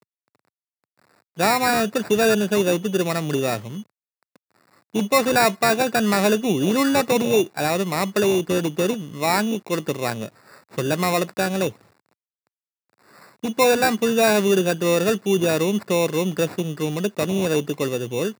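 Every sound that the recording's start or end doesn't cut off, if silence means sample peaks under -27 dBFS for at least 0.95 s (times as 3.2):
1.39–3.81
4.95–11.69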